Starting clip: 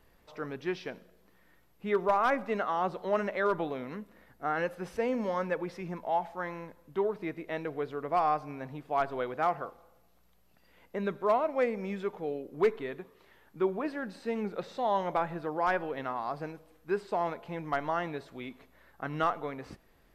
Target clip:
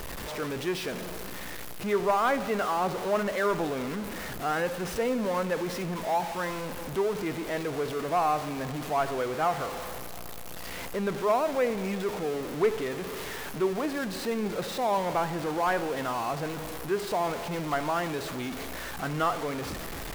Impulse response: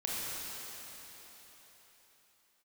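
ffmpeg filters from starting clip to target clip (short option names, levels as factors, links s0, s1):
-filter_complex "[0:a]aeval=exprs='val(0)+0.5*0.0266*sgn(val(0))':c=same,asplit=2[s0][s1];[1:a]atrim=start_sample=2205,adelay=73[s2];[s1][s2]afir=irnorm=-1:irlink=0,volume=0.0944[s3];[s0][s3]amix=inputs=2:normalize=0"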